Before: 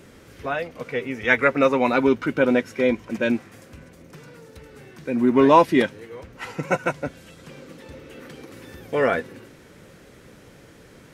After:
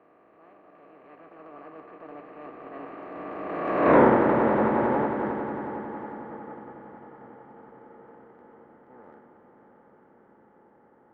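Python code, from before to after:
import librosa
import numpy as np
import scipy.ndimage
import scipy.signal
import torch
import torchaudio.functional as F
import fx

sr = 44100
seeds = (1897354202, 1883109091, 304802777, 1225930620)

p1 = fx.bin_compress(x, sr, power=0.2)
p2 = fx.doppler_pass(p1, sr, speed_mps=53, closest_m=5.2, pass_at_s=3.96)
p3 = scipy.signal.sosfilt(scipy.signal.butter(2, 1200.0, 'lowpass', fs=sr, output='sos'), p2)
p4 = fx.transient(p3, sr, attack_db=-7, sustain_db=-3)
p5 = p4 + fx.echo_swell(p4, sr, ms=90, loudest=5, wet_db=-13.0, dry=0)
p6 = fx.band_widen(p5, sr, depth_pct=40)
y = p6 * 10.0 ** (-2.0 / 20.0)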